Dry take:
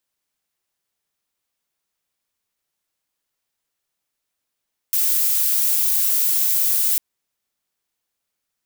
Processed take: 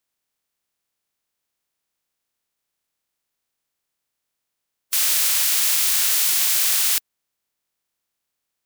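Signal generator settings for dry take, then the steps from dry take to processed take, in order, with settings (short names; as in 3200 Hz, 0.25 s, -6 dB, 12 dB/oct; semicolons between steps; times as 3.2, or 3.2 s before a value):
noise violet, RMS -18.5 dBFS 2.05 s
spectral limiter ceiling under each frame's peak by 23 dB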